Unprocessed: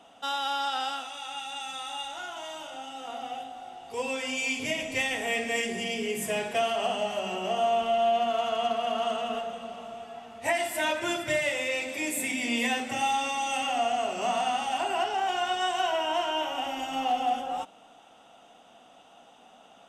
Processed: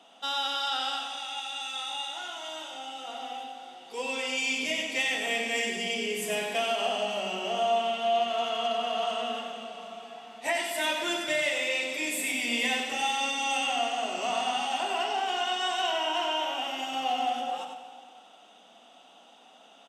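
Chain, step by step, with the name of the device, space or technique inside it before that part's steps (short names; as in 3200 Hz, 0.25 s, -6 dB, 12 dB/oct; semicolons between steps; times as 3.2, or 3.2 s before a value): PA in a hall (HPF 190 Hz 24 dB/oct; bell 3900 Hz +6.5 dB 1.2 oct; echo 95 ms -7 dB; reverb RT60 2.1 s, pre-delay 30 ms, DRR 8.5 dB); gain -3 dB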